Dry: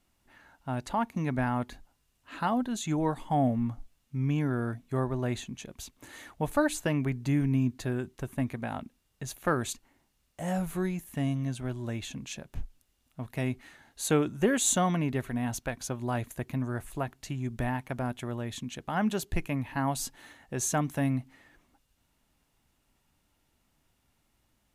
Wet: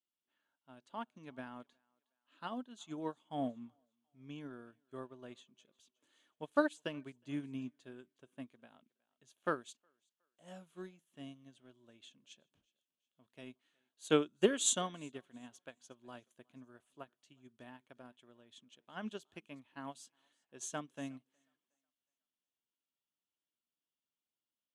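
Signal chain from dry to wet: cabinet simulation 250–9600 Hz, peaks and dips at 800 Hz -7 dB, 2 kHz -6 dB, 3.2 kHz +10 dB; thinning echo 365 ms, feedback 41%, high-pass 360 Hz, level -21 dB; upward expansion 2.5:1, over -39 dBFS

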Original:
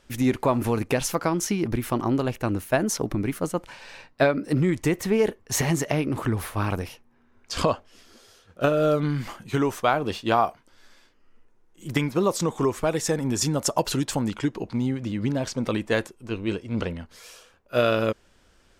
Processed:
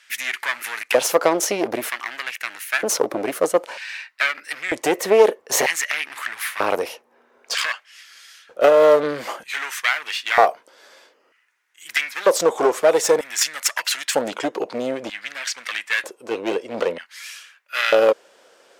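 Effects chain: one-sided clip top -27 dBFS; LFO high-pass square 0.53 Hz 510–1900 Hz; trim +7.5 dB

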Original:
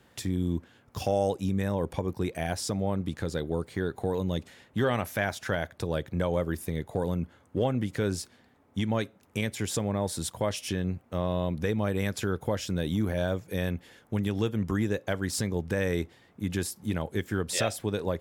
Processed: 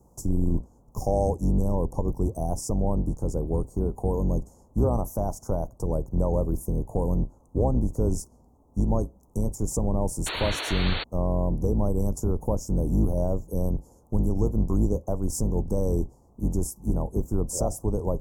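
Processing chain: octave divider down 2 oct, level +3 dB; elliptic band-stop 980–6200 Hz, stop band 40 dB; painted sound noise, 10.26–11.04 s, 270–4500 Hz -34 dBFS; trim +2 dB

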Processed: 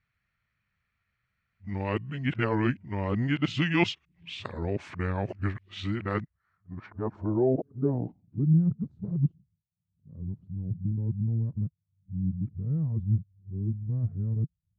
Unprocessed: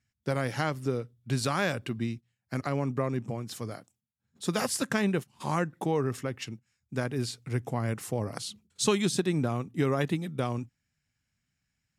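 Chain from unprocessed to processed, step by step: reverse the whole clip; wide varispeed 0.811×; low-pass sweep 2.4 kHz -> 150 Hz, 6.00–8.71 s

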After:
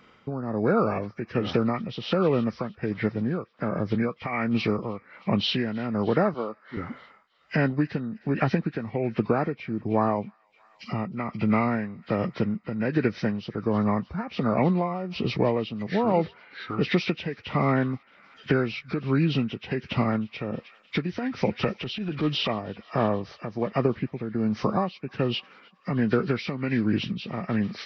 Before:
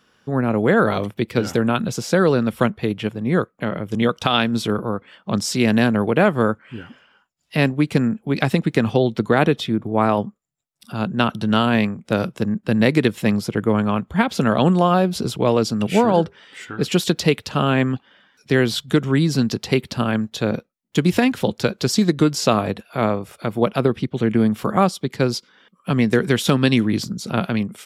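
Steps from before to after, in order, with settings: knee-point frequency compression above 1 kHz 1.5:1; 6.34–6.77 s: high-pass 300 Hz 12 dB/octave; compression 2.5:1, threshold -30 dBFS, peak gain reduction 13 dB; feedback echo behind a high-pass 311 ms, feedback 66%, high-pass 1.6 kHz, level -19.5 dB; tremolo 1.3 Hz, depth 67%; 16.11–16.86 s: resonant low-pass 5.1 kHz, resonance Q 1.6; 21.63–22.51 s: transient shaper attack -7 dB, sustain +3 dB; trim +6 dB

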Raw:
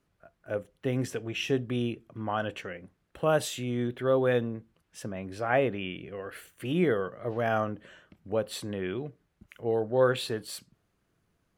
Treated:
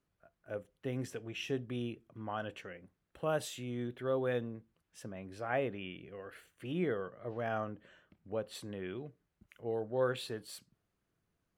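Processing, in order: 6.34–8.55 s: treble shelf 7.6 kHz -8.5 dB; trim -8.5 dB

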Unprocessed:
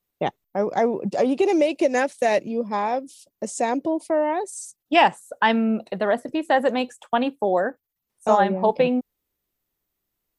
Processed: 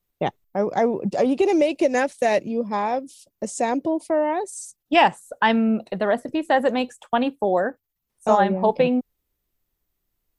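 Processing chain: bass shelf 85 Hz +12 dB

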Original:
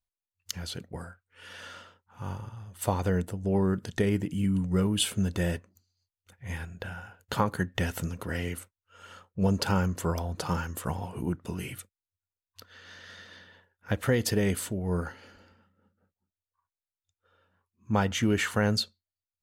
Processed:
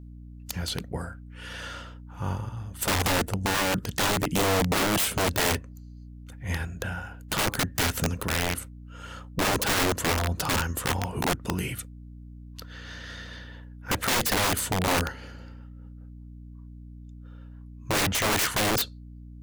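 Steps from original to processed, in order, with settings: hum 60 Hz, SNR 18 dB; integer overflow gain 25 dB; trim +6 dB

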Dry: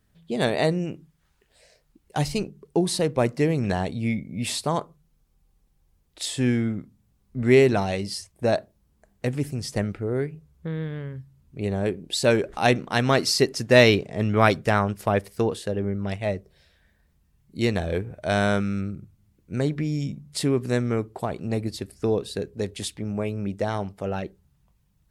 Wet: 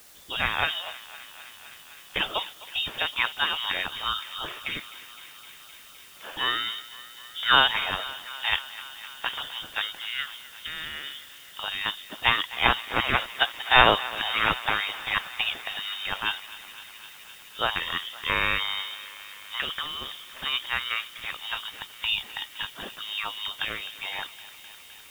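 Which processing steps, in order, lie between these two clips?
frequency inversion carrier 3.5 kHz; spectral gate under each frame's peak -15 dB weak; on a send: thinning echo 257 ms, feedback 84%, high-pass 510 Hz, level -17 dB; on the sum: word length cut 10-bit, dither triangular; trim +8.5 dB

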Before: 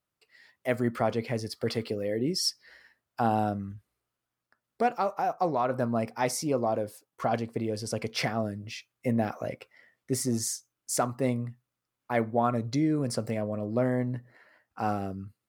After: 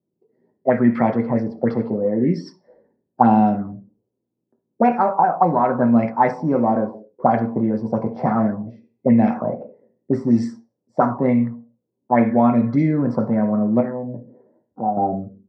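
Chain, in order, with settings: 13.80–14.97 s: compression 12:1, threshold -34 dBFS, peak gain reduction 11.5 dB; reverberation RT60 0.45 s, pre-delay 3 ms, DRR 2.5 dB; touch-sensitive low-pass 390–2400 Hz up, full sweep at -10.5 dBFS; trim -2.5 dB

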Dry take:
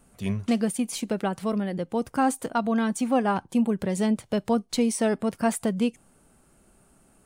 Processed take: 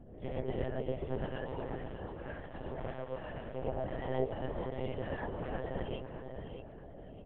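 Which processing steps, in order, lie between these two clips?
spectral gate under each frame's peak -15 dB weak; compression 2:1, threshold -38 dBFS, peak gain reduction 4.5 dB; boxcar filter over 35 samples; AM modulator 190 Hz, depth 50%; mains buzz 60 Hz, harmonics 11, -62 dBFS -4 dB/octave; 1.51–3.56 s: valve stage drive 43 dB, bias 0.75; feedback delay 618 ms, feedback 34%, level -8 dB; gated-style reverb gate 140 ms rising, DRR -4 dB; monotone LPC vocoder at 8 kHz 130 Hz; trim +8.5 dB

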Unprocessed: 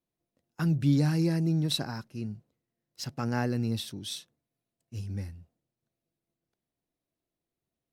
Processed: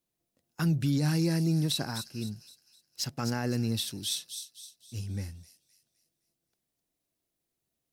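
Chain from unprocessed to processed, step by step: treble shelf 3.2 kHz +8 dB; peak limiter -19.5 dBFS, peak gain reduction 8 dB; on a send: feedback echo behind a high-pass 258 ms, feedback 41%, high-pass 4.7 kHz, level -5 dB

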